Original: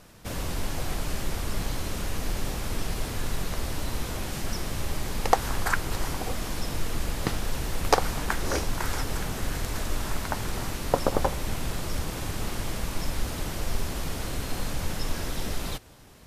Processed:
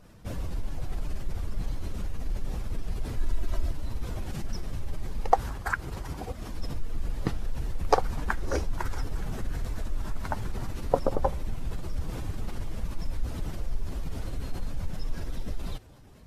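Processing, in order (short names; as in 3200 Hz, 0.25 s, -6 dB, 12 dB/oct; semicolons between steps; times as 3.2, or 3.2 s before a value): spectral contrast raised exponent 1.5; 3.17–3.71 comb 3.1 ms, depth 84%; 5.4–6.54 HPF 41 Hz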